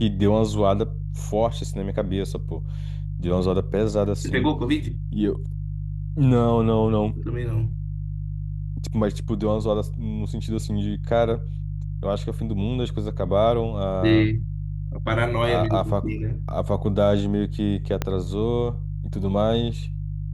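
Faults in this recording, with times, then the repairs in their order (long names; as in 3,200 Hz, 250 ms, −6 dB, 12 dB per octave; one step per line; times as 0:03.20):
mains hum 50 Hz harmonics 3 −29 dBFS
0:18.02: click −10 dBFS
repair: click removal
hum removal 50 Hz, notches 3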